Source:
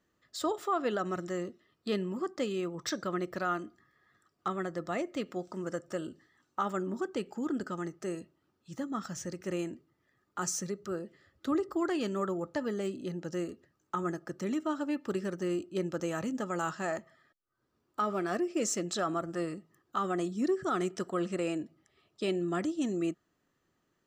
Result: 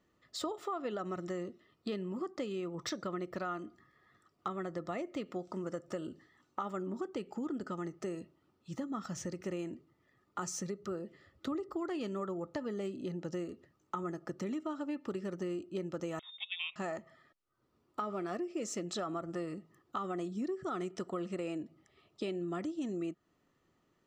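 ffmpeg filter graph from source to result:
-filter_complex "[0:a]asettb=1/sr,asplit=3[s0][s1][s2];[s0]atrim=end=16.194[s3];[s1]atrim=start=16.19:end=16.76,asetpts=PTS-STARTPTS,afade=t=in:d=0.004:c=qsin,afade=t=out:st=0.566:d=0.004:c=qsin,highpass=f=360:p=1,agate=range=0.224:threshold=0.0158:ratio=16:release=100:detection=peak,lowpass=f=3300:t=q:w=0.5098,lowpass=f=3300:t=q:w=0.6013,lowpass=f=3300:t=q:w=0.9,lowpass=f=3300:t=q:w=2.563,afreqshift=-3900[s4];[s2]atrim=start=16.756[s5];[s3][s4]acrossfade=d=0.004:c1=hsin:c2=qsin[s6];[s6][s5]acrossfade=d=0.004:c1=qsin:c2=hsin,highshelf=f=6100:g=-9,bandreject=f=1600:w=7.4,acompressor=threshold=0.0112:ratio=4,volume=1.41"

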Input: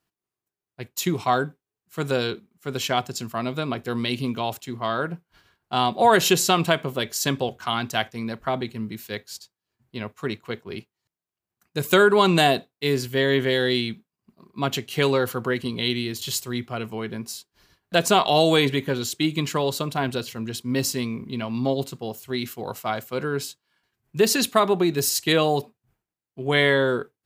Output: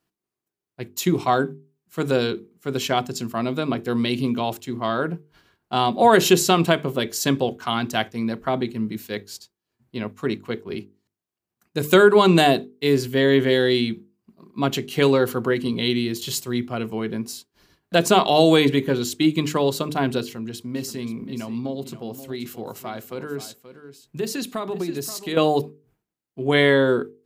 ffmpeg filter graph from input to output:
-filter_complex "[0:a]asettb=1/sr,asplit=3[s0][s1][s2];[s0]atrim=end=20.224[s3];[s1]atrim=start=20.22:end=25.37,asetpts=PTS-STARTPTS,afade=t=in:d=0.004:c=qsin,afade=t=out:st=5.146:d=0.004:c=qsin,acompressor=threshold=0.0178:ratio=2:attack=3.2:release=140:knee=1:detection=peak,aecho=1:1:529:0.224,atrim=end_sample=227115[s4];[s2]atrim=start=25.366[s5];[s3][s4]acrossfade=d=0.004:c1=hsin:c2=qsin[s6];[s6][s5]acrossfade=d=0.004:c1=qsin:c2=hsin,equalizer=f=280:w=0.81:g=6.5,bandreject=f=50:t=h:w=6,bandreject=f=100:t=h:w=6,bandreject=f=150:t=h:w=6,bandreject=f=200:t=h:w=6,bandreject=f=250:t=h:w=6,bandreject=f=300:t=h:w=6,bandreject=f=350:t=h:w=6,bandreject=f=400:t=h:w=6,bandreject=f=450:t=h:w=6"

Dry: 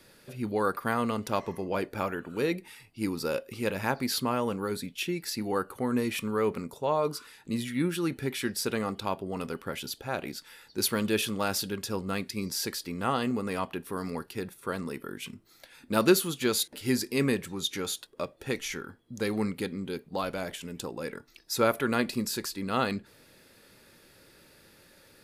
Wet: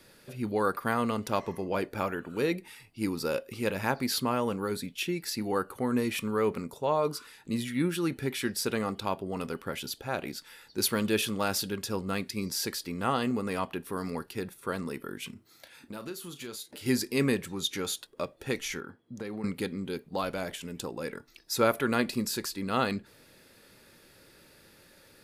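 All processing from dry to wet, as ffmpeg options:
-filter_complex "[0:a]asettb=1/sr,asplit=3[s0][s1][s2];[s0]atrim=end=15.334[s3];[s1]atrim=start=15.33:end=16.86,asetpts=PTS-STARTPTS,afade=t=in:d=0.004:c=qsin,afade=t=out:st=1.526:d=0.004:c=qsin,highpass=56,acompressor=threshold=0.01:ratio=4:attack=3.2:release=140:knee=1:detection=peak,asplit=2[s4][s5];[s5]adelay=34,volume=0.282[s6];[s4][s6]amix=inputs=2:normalize=0,atrim=end_sample=67473[s7];[s2]atrim=start=16.856[s8];[s3][s7]acrossfade=d=0.004:c1=hsin:c2=qsin[s9];[s9][s8]acrossfade=d=0.004:c1=qsin:c2=hsin,asettb=1/sr,asplit=3[s10][s11][s12];[s10]atrim=end=18.804[s13];[s11]atrim=start=18.8:end=19.44,asetpts=PTS-STARTPTS,afade=t=in:d=0.004:c=qsin,afade=t=out:st=0.636:d=0.004:c=qsin,highshelf=f=3500:g=-10,acompressor=threshold=0.0224:ratio=12:attack=3.2:release=140:knee=1:detection=peak,highpass=110[s14];[s12]atrim=start=19.436[s15];[s13][s14]acrossfade=d=0.004:c1=hsin:c2=qsin[s16];[s16][s15]acrossfade=d=0.004:c1=qsin:c2=hsin"

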